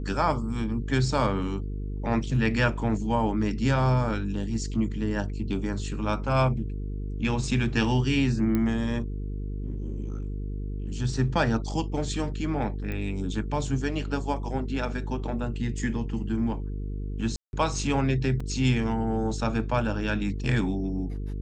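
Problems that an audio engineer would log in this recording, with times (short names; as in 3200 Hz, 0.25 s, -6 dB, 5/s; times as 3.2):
buzz 50 Hz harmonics 9 -32 dBFS
8.55 pop -15 dBFS
12.92 pop -21 dBFS
17.36–17.53 gap 0.171 s
18.4 gap 4 ms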